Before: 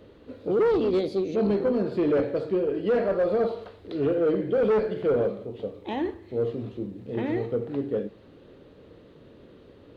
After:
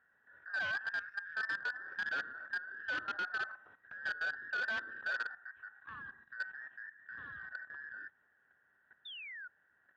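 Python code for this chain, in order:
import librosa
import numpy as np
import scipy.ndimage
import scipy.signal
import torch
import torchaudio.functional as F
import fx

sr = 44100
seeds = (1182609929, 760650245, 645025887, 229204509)

y = fx.band_invert(x, sr, width_hz=2000)
y = scipy.signal.sosfilt(scipy.signal.butter(2, 65.0, 'highpass', fs=sr, output='sos'), y)
y = fx.high_shelf(y, sr, hz=2400.0, db=-10.0)
y = fx.level_steps(y, sr, step_db=13)
y = fx.air_absorb(y, sr, metres=390.0)
y = fx.spec_paint(y, sr, seeds[0], shape='fall', start_s=9.05, length_s=0.43, low_hz=1400.0, high_hz=3700.0, level_db=-42.0)
y = fx.transformer_sat(y, sr, knee_hz=1600.0)
y = y * librosa.db_to_amplitude(-5.0)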